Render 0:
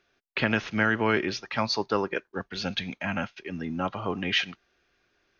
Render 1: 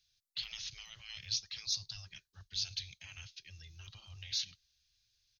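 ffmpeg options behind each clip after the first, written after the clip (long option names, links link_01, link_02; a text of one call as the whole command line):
ffmpeg -i in.wav -af "bandreject=frequency=1400:width=16,afftfilt=real='re*lt(hypot(re,im),0.0891)':imag='im*lt(hypot(re,im),0.0891)':win_size=1024:overlap=0.75,firequalizer=gain_entry='entry(100,0);entry(260,-30);entry(1000,-25);entry(4000,7)':delay=0.05:min_phase=1,volume=-3.5dB" out.wav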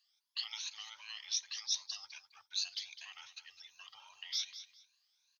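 ffmpeg -i in.wav -af "afftfilt=real='re*pow(10,16/40*sin(2*PI*(1.5*log(max(b,1)*sr/1024/100)/log(2)-(2.6)*(pts-256)/sr)))':imag='im*pow(10,16/40*sin(2*PI*(1.5*log(max(b,1)*sr/1024/100)/log(2)-(2.6)*(pts-256)/sr)))':win_size=1024:overlap=0.75,highpass=frequency=940:width_type=q:width=3.7,aecho=1:1:205|410:0.224|0.047,volume=-3.5dB" out.wav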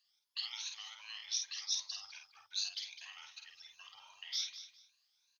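ffmpeg -i in.wav -filter_complex "[0:a]asplit=2[link_01][link_02];[link_02]adelay=50,volume=-5dB[link_03];[link_01][link_03]amix=inputs=2:normalize=0,volume=-1.5dB" out.wav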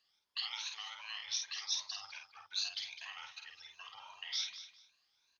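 ffmpeg -i in.wav -af "lowpass=frequency=1700:poles=1,volume=9dB" out.wav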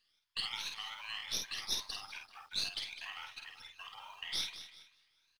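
ffmpeg -i in.wav -filter_complex "[0:a]asplit=2[link_01][link_02];[link_02]adelay=386,lowpass=frequency=910:poles=1,volume=-10dB,asplit=2[link_03][link_04];[link_04]adelay=386,lowpass=frequency=910:poles=1,volume=0.33,asplit=2[link_05][link_06];[link_06]adelay=386,lowpass=frequency=910:poles=1,volume=0.33,asplit=2[link_07][link_08];[link_08]adelay=386,lowpass=frequency=910:poles=1,volume=0.33[link_09];[link_01][link_03][link_05][link_07][link_09]amix=inputs=5:normalize=0,acrossover=split=140|1100|4500[link_10][link_11][link_12][link_13];[link_11]acrusher=bits=11:mix=0:aa=0.000001[link_14];[link_13]aeval=exprs='max(val(0),0)':channel_layout=same[link_15];[link_10][link_14][link_12][link_15]amix=inputs=4:normalize=0,volume=2.5dB" out.wav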